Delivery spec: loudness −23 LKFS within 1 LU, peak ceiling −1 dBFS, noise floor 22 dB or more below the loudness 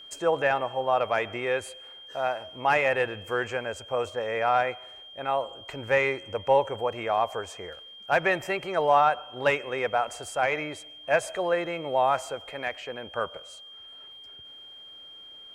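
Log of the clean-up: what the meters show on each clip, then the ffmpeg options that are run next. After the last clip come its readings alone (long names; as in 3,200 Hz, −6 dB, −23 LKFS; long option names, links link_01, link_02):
interfering tone 3,200 Hz; level of the tone −44 dBFS; integrated loudness −27.0 LKFS; sample peak −9.5 dBFS; target loudness −23.0 LKFS
→ -af "bandreject=frequency=3200:width=30"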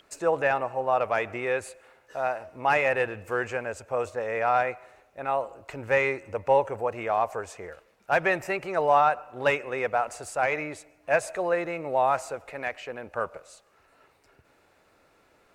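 interfering tone none found; integrated loudness −27.0 LKFS; sample peak −9.5 dBFS; target loudness −23.0 LKFS
→ -af "volume=4dB"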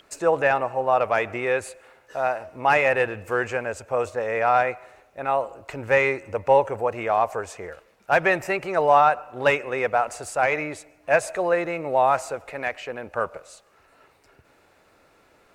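integrated loudness −23.0 LKFS; sample peak −5.5 dBFS; background noise floor −59 dBFS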